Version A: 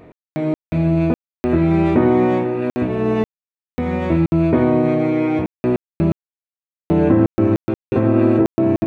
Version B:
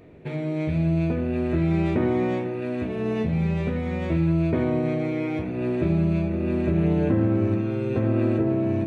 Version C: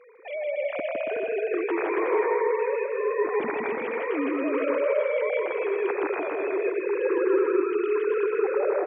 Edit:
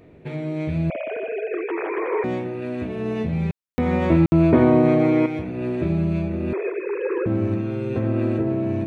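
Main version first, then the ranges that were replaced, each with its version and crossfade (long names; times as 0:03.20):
B
0:00.90–0:02.24: punch in from C
0:03.51–0:05.26: punch in from A
0:06.53–0:07.26: punch in from C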